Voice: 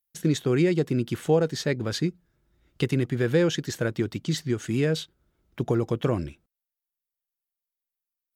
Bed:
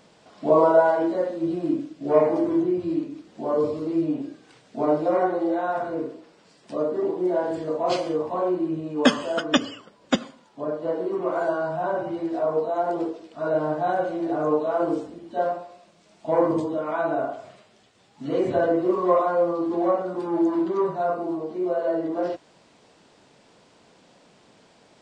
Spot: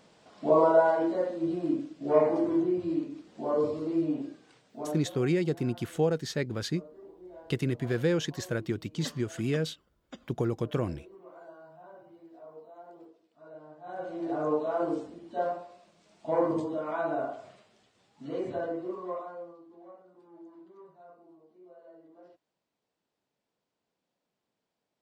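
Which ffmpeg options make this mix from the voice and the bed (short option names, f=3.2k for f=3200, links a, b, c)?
-filter_complex "[0:a]adelay=4700,volume=-5dB[a];[1:a]volume=14.5dB,afade=t=out:st=4.25:d=0.86:silence=0.0944061,afade=t=in:st=13.82:d=0.49:silence=0.112202,afade=t=out:st=17.47:d=2.17:silence=0.0707946[b];[a][b]amix=inputs=2:normalize=0"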